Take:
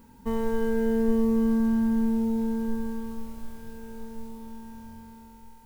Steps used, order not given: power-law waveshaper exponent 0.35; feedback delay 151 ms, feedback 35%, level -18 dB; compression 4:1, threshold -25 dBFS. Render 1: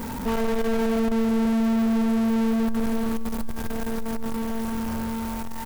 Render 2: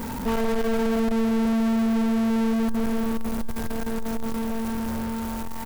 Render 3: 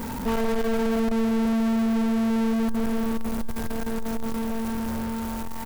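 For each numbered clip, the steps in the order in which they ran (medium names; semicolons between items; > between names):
compression > power-law waveshaper > feedback delay; compression > feedback delay > power-law waveshaper; feedback delay > compression > power-law waveshaper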